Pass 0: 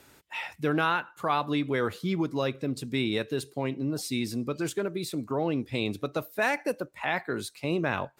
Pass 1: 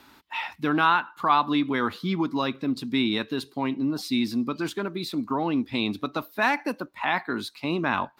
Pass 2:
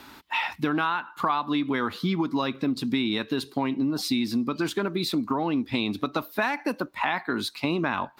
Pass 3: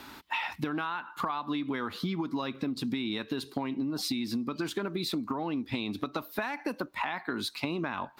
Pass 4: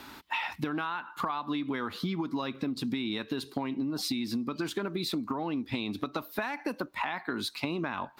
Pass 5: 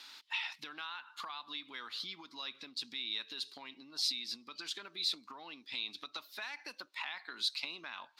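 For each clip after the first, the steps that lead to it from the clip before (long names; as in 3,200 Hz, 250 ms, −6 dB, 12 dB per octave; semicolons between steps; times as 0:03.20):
octave-band graphic EQ 125/250/500/1,000/4,000/8,000 Hz −6/+9/−8/+10/+7/−8 dB
downward compressor 6 to 1, threshold −29 dBFS, peak gain reduction 13 dB; level +6.5 dB
downward compressor, threshold −29 dBFS, peak gain reduction 9 dB
no processing that can be heard
resonant band-pass 4,400 Hz, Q 1.5; level +3 dB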